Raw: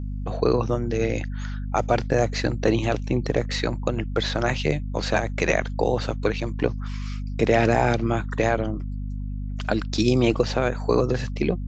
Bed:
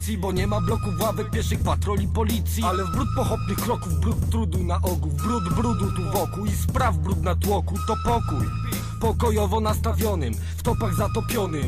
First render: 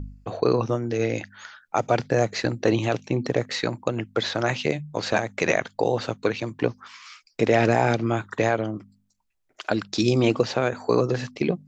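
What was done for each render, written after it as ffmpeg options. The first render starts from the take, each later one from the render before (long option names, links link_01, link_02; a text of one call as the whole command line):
ffmpeg -i in.wav -af "bandreject=frequency=50:width_type=h:width=4,bandreject=frequency=100:width_type=h:width=4,bandreject=frequency=150:width_type=h:width=4,bandreject=frequency=200:width_type=h:width=4,bandreject=frequency=250:width_type=h:width=4" out.wav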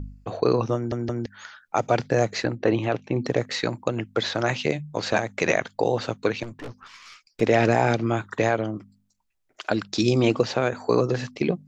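ffmpeg -i in.wav -filter_complex "[0:a]asettb=1/sr,asplit=3[link_01][link_02][link_03];[link_01]atrim=end=2.444[link_04];[link_02]atrim=start=2.44:end=3.16,asetpts=PTS-STARTPTS,afade=type=in:duration=0.004:curve=qsin,afade=type=out:start_time=0.716:duration=0.004:curve=qsin,bass=frequency=250:gain=-2,treble=frequency=4000:gain=-15[link_05];[link_03]atrim=start=3.156[link_06];[link_04][link_05]acrossfade=duration=0.004:curve1=hsin:curve2=qsin[link_07];[link_07][link_06]acrossfade=duration=0.004:curve1=qsin:curve2=hsin,asettb=1/sr,asplit=3[link_08][link_09][link_10];[link_08]atrim=end=6.434[link_11];[link_09]atrim=start=6.43:end=7.41,asetpts=PTS-STARTPTS,afade=type=in:duration=0.004:curve=qsin,afade=type=out:start_time=0.976:duration=0.004:curve=qsin,aeval=exprs='(tanh(44.7*val(0)+0.45)-tanh(0.45))/44.7':channel_layout=same[link_12];[link_10]atrim=start=7.406[link_13];[link_11][link_12]acrossfade=duration=0.004:curve1=hsin:curve2=qsin[link_14];[link_14][link_13]acrossfade=duration=0.004:curve1=qsin:curve2=hsin,asplit=4[link_15][link_16][link_17][link_18];[link_15]atrim=end=0.922[link_19];[link_16]atrim=start=0.748:end=0.922[link_20];[link_17]atrim=start=0.748:end=0.922[link_21];[link_18]atrim=start=1.258[link_22];[link_19][link_20]acrossfade=duration=0.004:curve1=hsin:curve2=hsin[link_23];[link_23][link_21]acrossfade=duration=0.004:curve1=hsin:curve2=hsin[link_24];[link_24][link_22]acrossfade=duration=0.004:curve1=hsin:curve2=hsin" out.wav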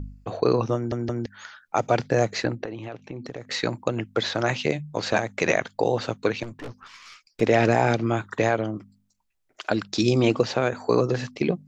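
ffmpeg -i in.wav -filter_complex "[0:a]asettb=1/sr,asplit=3[link_01][link_02][link_03];[link_01]atrim=end=2.644[link_04];[link_02]atrim=start=2.64:end=3.5,asetpts=PTS-STARTPTS,afade=type=in:duration=0.004:curve=qsin,afade=type=out:start_time=0.856:duration=0.004:curve=qsin,acompressor=threshold=-35dB:ratio=3:attack=3.2:release=140:knee=1:detection=peak[link_05];[link_03]atrim=start=3.496[link_06];[link_04][link_05]acrossfade=duration=0.004:curve1=hsin:curve2=qsin[link_07];[link_07][link_06]acrossfade=duration=0.004:curve1=qsin:curve2=hsin" out.wav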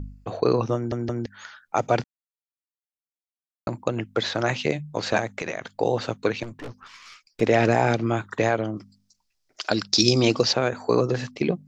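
ffmpeg -i in.wav -filter_complex "[0:a]asplit=3[link_01][link_02][link_03];[link_01]afade=type=out:start_time=5.35:duration=0.02[link_04];[link_02]acompressor=threshold=-26dB:ratio=6:attack=3.2:release=140:knee=1:detection=peak,afade=type=in:start_time=5.35:duration=0.02,afade=type=out:start_time=5.8:duration=0.02[link_05];[link_03]afade=type=in:start_time=5.8:duration=0.02[link_06];[link_04][link_05][link_06]amix=inputs=3:normalize=0,asettb=1/sr,asplit=3[link_07][link_08][link_09];[link_07]atrim=end=8.774[link_10];[link_08]atrim=start=8.77:end=10.53,asetpts=PTS-STARTPTS,afade=type=in:duration=0.004:curve=qsin,afade=type=out:start_time=1.756:duration=0.004:curve=qsin,equalizer=frequency=5100:width=1.6:gain=14[link_11];[link_09]atrim=start=10.526[link_12];[link_10][link_11]acrossfade=duration=0.004:curve1=hsin:curve2=qsin[link_13];[link_13][link_12]acrossfade=duration=0.004:curve1=qsin:curve2=hsin,asplit=3[link_14][link_15][link_16];[link_14]atrim=end=2.04,asetpts=PTS-STARTPTS,afade=type=out:start_time=2.036:duration=0.004:curve=hsin[link_17];[link_15]atrim=start=2.04:end=3.67,asetpts=PTS-STARTPTS,volume=0[link_18];[link_16]atrim=start=3.67,asetpts=PTS-STARTPTS,afade=type=in:duration=0.004:curve=hsin[link_19];[link_17][link_18][link_19]concat=n=3:v=0:a=1" out.wav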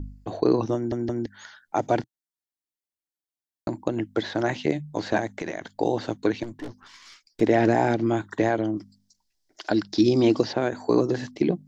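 ffmpeg -i in.wav -filter_complex "[0:a]acrossover=split=2800[link_01][link_02];[link_02]acompressor=threshold=-40dB:ratio=4:attack=1:release=60[link_03];[link_01][link_03]amix=inputs=2:normalize=0,equalizer=frequency=125:width_type=o:width=0.33:gain=-5,equalizer=frequency=315:width_type=o:width=0.33:gain=7,equalizer=frequency=500:width_type=o:width=0.33:gain=-5,equalizer=frequency=1250:width_type=o:width=0.33:gain=-9,equalizer=frequency=2500:width_type=o:width=0.33:gain=-8" out.wav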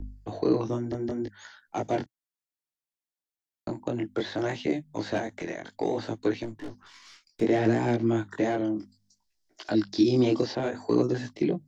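ffmpeg -i in.wav -filter_complex "[0:a]flanger=delay=16.5:depth=7.7:speed=0.63,acrossover=split=290|550|2300[link_01][link_02][link_03][link_04];[link_03]asoftclip=type=tanh:threshold=-30dB[link_05];[link_01][link_02][link_05][link_04]amix=inputs=4:normalize=0" out.wav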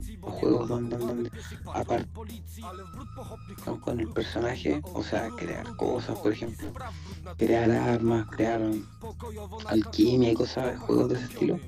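ffmpeg -i in.wav -i bed.wav -filter_complex "[1:a]volume=-17.5dB[link_01];[0:a][link_01]amix=inputs=2:normalize=0" out.wav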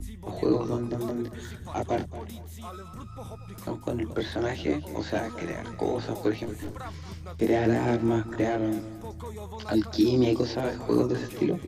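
ffmpeg -i in.wav -af "aecho=1:1:228|456|684:0.188|0.0622|0.0205" out.wav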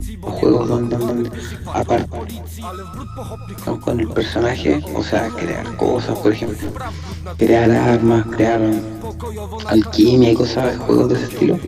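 ffmpeg -i in.wav -af "volume=11.5dB,alimiter=limit=-2dB:level=0:latency=1" out.wav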